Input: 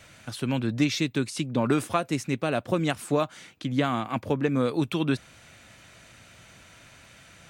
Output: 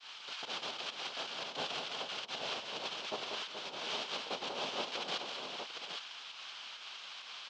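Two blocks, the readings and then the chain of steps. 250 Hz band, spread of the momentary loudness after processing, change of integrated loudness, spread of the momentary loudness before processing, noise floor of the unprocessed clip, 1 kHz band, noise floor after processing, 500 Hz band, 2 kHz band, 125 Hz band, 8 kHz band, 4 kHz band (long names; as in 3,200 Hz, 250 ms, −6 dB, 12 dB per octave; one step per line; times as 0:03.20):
−27.0 dB, 8 LU, −12.5 dB, 5 LU, −53 dBFS, −9.5 dB, −50 dBFS, −15.5 dB, −7.0 dB, −32.0 dB, −9.5 dB, +0.5 dB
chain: reverb reduction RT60 0.76 s
first difference
compressor whose output falls as the input rises −45 dBFS, ratio −0.5
transient designer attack −6 dB, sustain −1 dB
brickwall limiter −36 dBFS, peak gain reduction 8 dB
cochlear-implant simulation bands 2
fake sidechain pumping 133 BPM, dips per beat 1, −16 dB, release 112 ms
loudspeaker in its box 290–4,500 Hz, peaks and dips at 310 Hz −6 dB, 1,900 Hz −7 dB, 3,100 Hz +6 dB
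multi-tap delay 191/428/748/815 ms −5.5/−9/−12/−5.5 dB
level +11.5 dB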